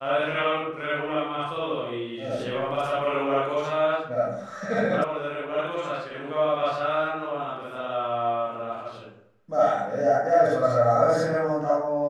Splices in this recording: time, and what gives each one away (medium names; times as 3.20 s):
5.04 s: sound stops dead